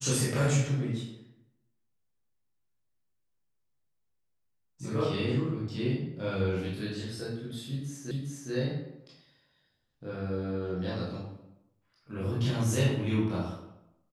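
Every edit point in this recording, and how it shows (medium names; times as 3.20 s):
8.11 s: repeat of the last 0.41 s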